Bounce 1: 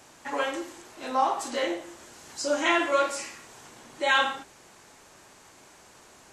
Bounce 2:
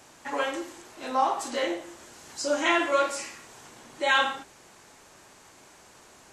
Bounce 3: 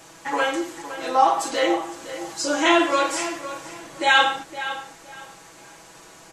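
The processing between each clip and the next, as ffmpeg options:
ffmpeg -i in.wav -af anull out.wav
ffmpeg -i in.wav -filter_complex "[0:a]aecho=1:1:6.1:0.65,asplit=2[link_01][link_02];[link_02]adelay=512,lowpass=frequency=3700:poles=1,volume=-12dB,asplit=2[link_03][link_04];[link_04]adelay=512,lowpass=frequency=3700:poles=1,volume=0.26,asplit=2[link_05][link_06];[link_06]adelay=512,lowpass=frequency=3700:poles=1,volume=0.26[link_07];[link_01][link_03][link_05][link_07]amix=inputs=4:normalize=0,volume=5dB" out.wav

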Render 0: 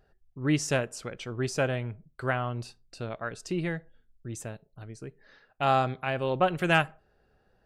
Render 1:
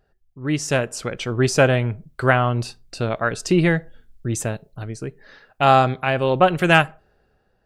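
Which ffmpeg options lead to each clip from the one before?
ffmpeg -i in.wav -af "dynaudnorm=framelen=150:gausssize=11:maxgain=14dB" out.wav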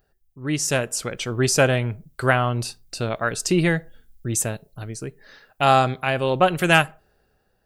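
ffmpeg -i in.wav -af "aemphasis=mode=production:type=50kf,volume=-2.5dB" out.wav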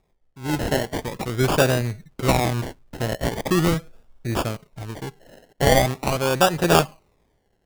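ffmpeg -i in.wav -af "acrusher=samples=29:mix=1:aa=0.000001:lfo=1:lforange=17.4:lforate=0.42" out.wav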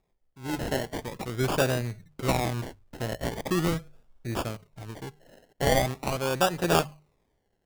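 ffmpeg -i in.wav -af "bandreject=frequency=50:width_type=h:width=6,bandreject=frequency=100:width_type=h:width=6,bandreject=frequency=150:width_type=h:width=6,volume=-6.5dB" out.wav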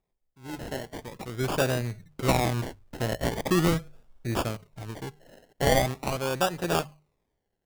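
ffmpeg -i in.wav -af "dynaudnorm=framelen=300:gausssize=11:maxgain=11.5dB,volume=-6.5dB" out.wav

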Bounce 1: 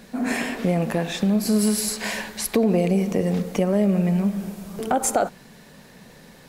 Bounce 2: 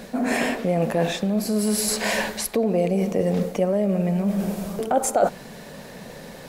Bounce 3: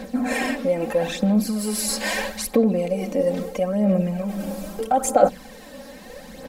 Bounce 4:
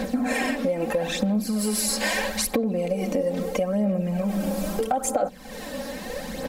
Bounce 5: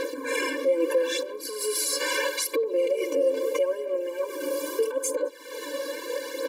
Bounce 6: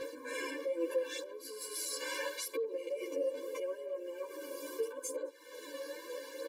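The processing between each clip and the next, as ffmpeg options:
ffmpeg -i in.wav -af "areverse,acompressor=threshold=-27dB:ratio=6,areverse,equalizer=frequency=580:width=1.6:gain=6.5,volume=6dB" out.wav
ffmpeg -i in.wav -af "aecho=1:1:3.8:0.79,aphaser=in_gain=1:out_gain=1:delay=3.6:decay=0.51:speed=0.77:type=sinusoidal,volume=-4dB" out.wav
ffmpeg -i in.wav -af "acompressor=threshold=-29dB:ratio=6,volume=7dB" out.wav
ffmpeg -i in.wav -af "alimiter=limit=-18dB:level=0:latency=1:release=10,afftfilt=real='re*eq(mod(floor(b*sr/1024/300),2),1)':imag='im*eq(mod(floor(b*sr/1024/300),2),1)':win_size=1024:overlap=0.75,volume=4dB" out.wav
ffmpeg -i in.wav -filter_complex "[0:a]asplit=2[link_01][link_02];[link_02]adelay=11,afreqshift=1.9[link_03];[link_01][link_03]amix=inputs=2:normalize=1,volume=-9dB" out.wav

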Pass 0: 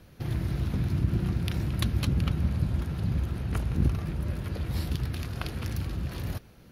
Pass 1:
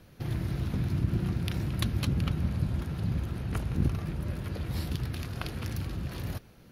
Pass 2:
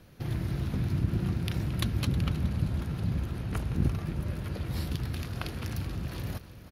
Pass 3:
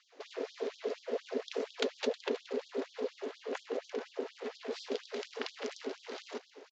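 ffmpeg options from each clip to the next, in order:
ffmpeg -i in.wav -af "equalizer=frequency=63:width_type=o:width=0.57:gain=-4.5,volume=-1dB" out.wav
ffmpeg -i in.wav -af "aecho=1:1:316|632|948|1264|1580:0.178|0.096|0.0519|0.028|0.0151" out.wav
ffmpeg -i in.wav -af "aeval=exprs='val(0)*sin(2*PI*330*n/s)':channel_layout=same,aresample=16000,aresample=44100,afftfilt=real='re*gte(b*sr/1024,230*pow(3200/230,0.5+0.5*sin(2*PI*4.2*pts/sr)))':imag='im*gte(b*sr/1024,230*pow(3200/230,0.5+0.5*sin(2*PI*4.2*pts/sr)))':win_size=1024:overlap=0.75,volume=2dB" out.wav

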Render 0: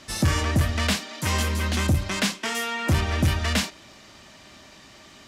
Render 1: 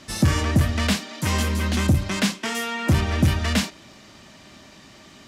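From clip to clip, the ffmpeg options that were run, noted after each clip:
ffmpeg -i in.wav -af "equalizer=frequency=190:width=0.71:gain=5" out.wav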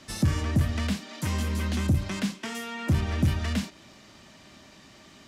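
ffmpeg -i in.wav -filter_complex "[0:a]acrossover=split=310[link_01][link_02];[link_02]acompressor=threshold=-29dB:ratio=6[link_03];[link_01][link_03]amix=inputs=2:normalize=0,volume=-4.5dB" out.wav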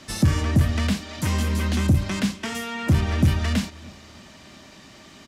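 ffmpeg -i in.wav -filter_complex "[0:a]asplit=2[link_01][link_02];[link_02]adelay=309,lowpass=frequency=2000:poles=1,volume=-22dB,asplit=2[link_03][link_04];[link_04]adelay=309,lowpass=frequency=2000:poles=1,volume=0.41,asplit=2[link_05][link_06];[link_06]adelay=309,lowpass=frequency=2000:poles=1,volume=0.41[link_07];[link_01][link_03][link_05][link_07]amix=inputs=4:normalize=0,volume=5dB" out.wav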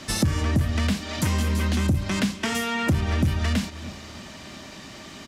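ffmpeg -i in.wav -af "acompressor=threshold=-27dB:ratio=3,volume=5.5dB" out.wav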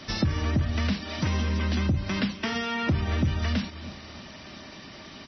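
ffmpeg -i in.wav -af "volume=-2.5dB" -ar 24000 -c:a libmp3lame -b:a 24k out.mp3

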